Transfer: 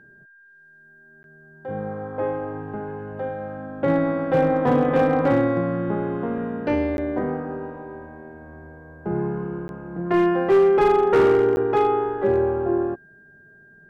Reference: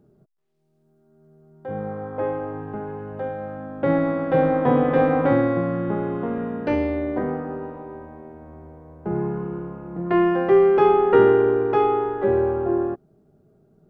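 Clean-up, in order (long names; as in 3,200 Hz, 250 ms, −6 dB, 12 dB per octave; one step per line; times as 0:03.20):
clipped peaks rebuilt −12 dBFS
notch filter 1,600 Hz, Q 30
repair the gap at 0:01.23/0:06.97/0:09.68/0:11.56, 11 ms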